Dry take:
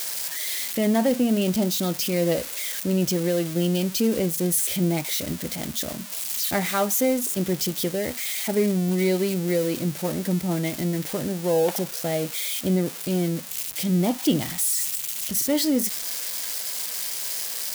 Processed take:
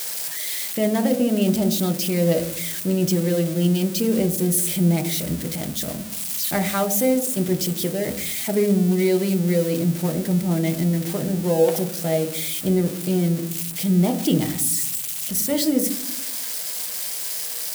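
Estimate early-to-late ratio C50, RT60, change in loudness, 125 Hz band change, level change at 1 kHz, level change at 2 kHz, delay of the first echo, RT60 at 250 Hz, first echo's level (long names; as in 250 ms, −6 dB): 13.0 dB, 0.70 s, +2.5 dB, +5.0 dB, +0.5 dB, 0.0 dB, no echo audible, 1.1 s, no echo audible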